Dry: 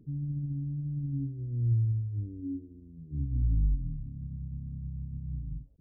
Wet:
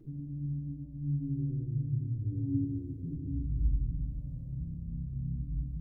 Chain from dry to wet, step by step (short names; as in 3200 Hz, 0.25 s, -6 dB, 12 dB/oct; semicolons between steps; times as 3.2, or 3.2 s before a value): 3.93–4.49 resonant low shelf 410 Hz -11.5 dB, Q 3; compressor 4:1, threshold -41 dBFS, peak gain reduction 16 dB; reverb RT60 2.9 s, pre-delay 3 ms, DRR -3.5 dB